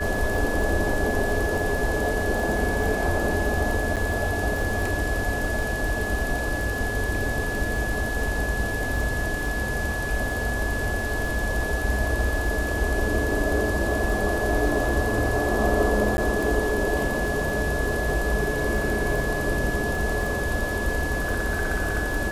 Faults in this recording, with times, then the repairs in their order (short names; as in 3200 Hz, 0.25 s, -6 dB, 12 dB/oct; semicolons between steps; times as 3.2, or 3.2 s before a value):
crackle 35/s -31 dBFS
tone 1700 Hz -29 dBFS
3.96–3.97 gap 7.5 ms
16.17–16.18 gap 10 ms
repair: de-click; notch 1700 Hz, Q 30; interpolate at 3.96, 7.5 ms; interpolate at 16.17, 10 ms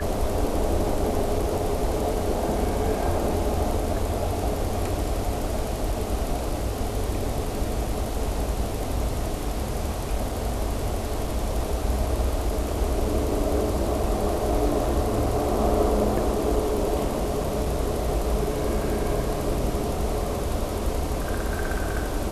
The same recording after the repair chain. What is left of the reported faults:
none